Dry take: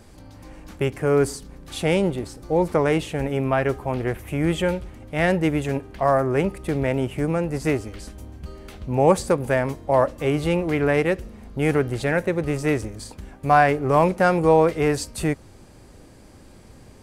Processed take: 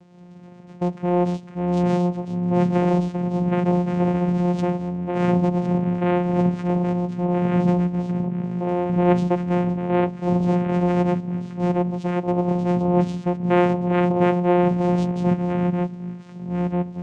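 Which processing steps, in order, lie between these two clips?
ever faster or slower copies 104 ms, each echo -6 st, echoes 3; vocoder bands 4, saw 177 Hz

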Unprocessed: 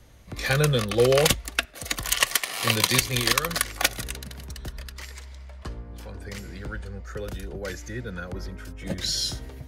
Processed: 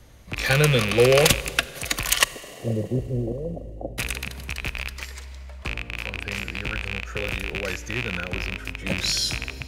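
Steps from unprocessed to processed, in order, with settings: rattle on loud lows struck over -35 dBFS, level -17 dBFS; 2.24–3.98 s: steep low-pass 640 Hz 48 dB/octave; Schroeder reverb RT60 2.6 s, combs from 33 ms, DRR 17 dB; trim +2.5 dB

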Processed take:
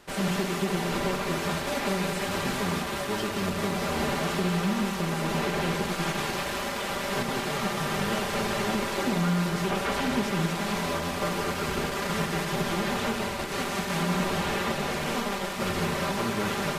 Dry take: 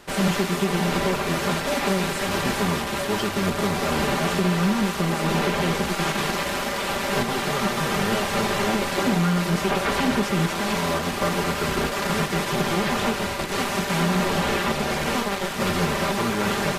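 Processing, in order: two-band feedback delay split 440 Hz, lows 85 ms, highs 181 ms, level -7 dB; 3.71–4.46 s: crackle 58 per s -35 dBFS; trim -6 dB

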